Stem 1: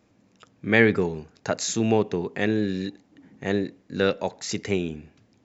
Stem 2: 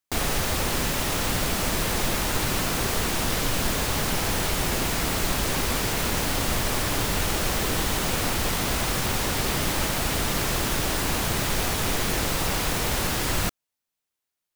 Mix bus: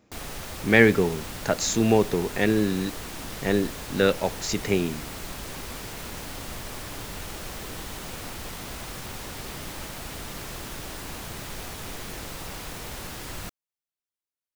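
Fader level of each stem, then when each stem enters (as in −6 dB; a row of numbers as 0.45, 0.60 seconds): +1.5, −11.5 decibels; 0.00, 0.00 seconds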